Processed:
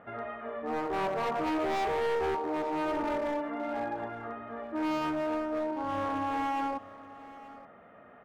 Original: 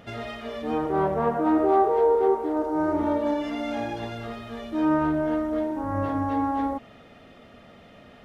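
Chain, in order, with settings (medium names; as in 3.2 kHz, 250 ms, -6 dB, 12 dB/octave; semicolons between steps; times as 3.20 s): low-pass 1.5 kHz 24 dB/octave; tilt EQ +4 dB/octave; overload inside the chain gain 28 dB; on a send: delay 877 ms -17.5 dB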